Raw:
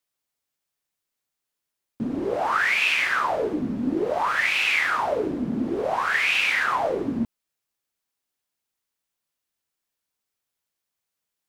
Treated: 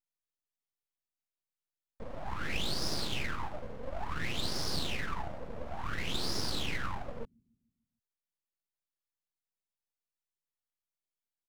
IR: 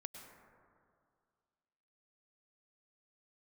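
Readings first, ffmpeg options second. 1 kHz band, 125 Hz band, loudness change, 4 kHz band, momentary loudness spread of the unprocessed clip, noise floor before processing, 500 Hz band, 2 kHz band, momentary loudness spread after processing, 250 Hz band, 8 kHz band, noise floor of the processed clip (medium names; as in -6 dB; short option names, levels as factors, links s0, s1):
-16.0 dB, -1.5 dB, -14.0 dB, -6.0 dB, 8 LU, -84 dBFS, -16.0 dB, -18.5 dB, 11 LU, -15.5 dB, -3.5 dB, under -85 dBFS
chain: -filter_complex "[0:a]bass=f=250:g=-5,treble=f=4000:g=-5,acrossover=split=160[s0][s1];[s0]aecho=1:1:148|296|444|592|740:0.119|0.0642|0.0347|0.0187|0.0101[s2];[s1]aeval=exprs='abs(val(0))':c=same[s3];[s2][s3]amix=inputs=2:normalize=0,volume=0.376"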